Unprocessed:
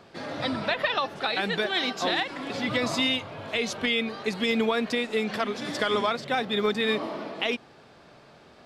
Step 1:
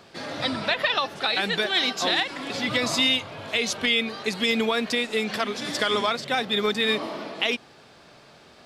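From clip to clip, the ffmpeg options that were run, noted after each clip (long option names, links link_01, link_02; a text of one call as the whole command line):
ffmpeg -i in.wav -af "highshelf=frequency=2500:gain=8" out.wav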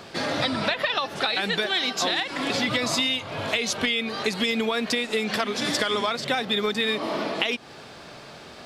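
ffmpeg -i in.wav -af "acompressor=threshold=-30dB:ratio=6,volume=8dB" out.wav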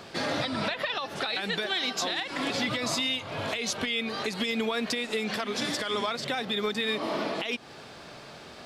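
ffmpeg -i in.wav -af "alimiter=limit=-16.5dB:level=0:latency=1:release=137,volume=-2.5dB" out.wav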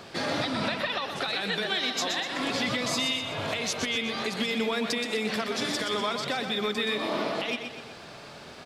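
ffmpeg -i in.wav -af "aecho=1:1:124|248|372|496|620|744:0.447|0.214|0.103|0.0494|0.0237|0.0114" out.wav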